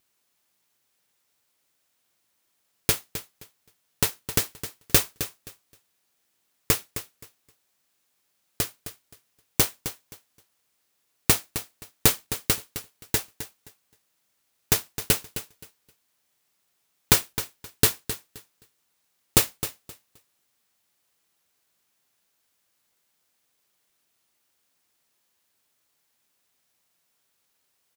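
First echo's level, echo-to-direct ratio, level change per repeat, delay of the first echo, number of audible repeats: −12.0 dB, −12.0 dB, −14.0 dB, 262 ms, 2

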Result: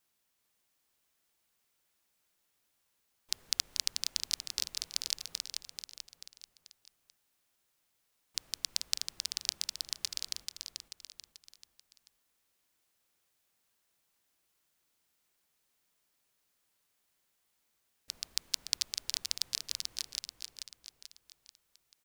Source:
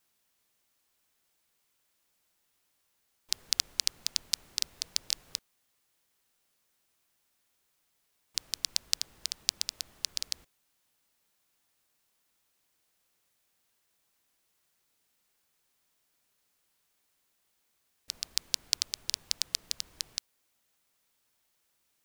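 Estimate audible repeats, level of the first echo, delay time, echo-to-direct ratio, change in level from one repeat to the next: 4, −5.5 dB, 437 ms, −4.5 dB, −7.0 dB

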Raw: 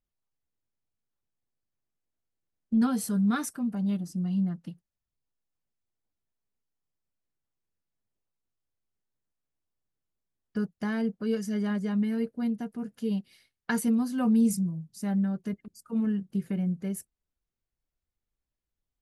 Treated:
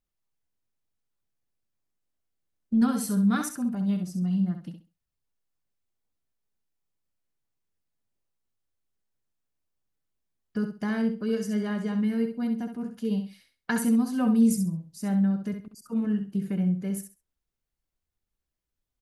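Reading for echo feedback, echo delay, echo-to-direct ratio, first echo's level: 22%, 66 ms, −7.5 dB, −7.5 dB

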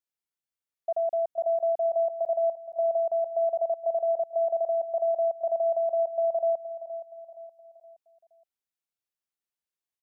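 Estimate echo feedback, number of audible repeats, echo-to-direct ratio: 44%, 4, −12.0 dB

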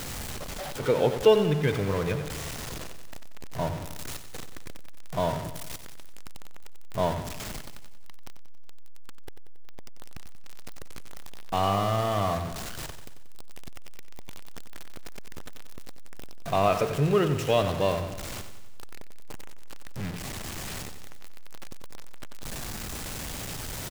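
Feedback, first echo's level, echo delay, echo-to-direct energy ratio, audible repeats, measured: 56%, −10.5 dB, 92 ms, −9.0 dB, 5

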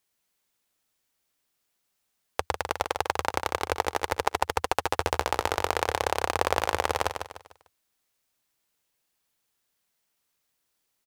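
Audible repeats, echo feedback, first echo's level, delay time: 4, 35%, −7.0 dB, 149 ms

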